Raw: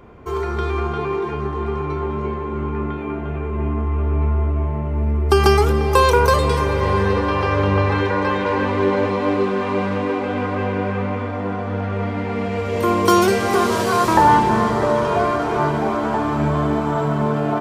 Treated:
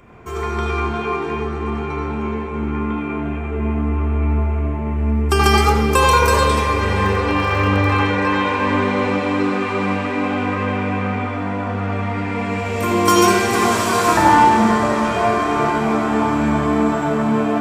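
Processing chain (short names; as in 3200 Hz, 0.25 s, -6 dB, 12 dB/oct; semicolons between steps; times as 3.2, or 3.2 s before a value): 7.04–7.99 crackle 34/s -29 dBFS; reverb RT60 1.0 s, pre-delay 75 ms, DRR 0.5 dB; gain +3 dB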